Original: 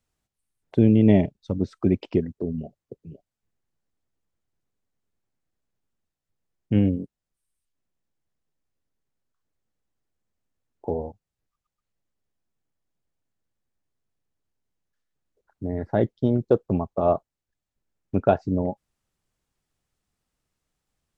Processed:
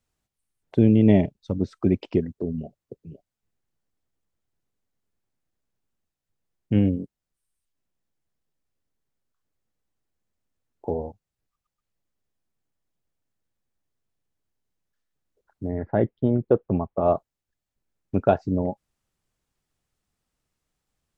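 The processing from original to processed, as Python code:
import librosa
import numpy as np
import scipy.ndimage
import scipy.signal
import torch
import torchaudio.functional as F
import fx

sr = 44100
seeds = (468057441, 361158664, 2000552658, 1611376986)

y = fx.lowpass(x, sr, hz=2700.0, slope=24, at=(15.71, 17.06))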